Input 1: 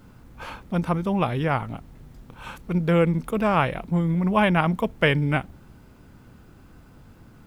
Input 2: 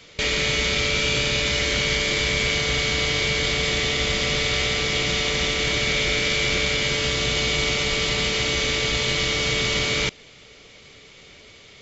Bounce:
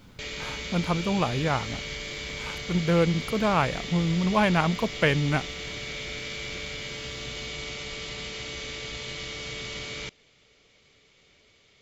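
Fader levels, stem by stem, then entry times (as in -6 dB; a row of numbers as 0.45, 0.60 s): -2.5, -13.5 dB; 0.00, 0.00 s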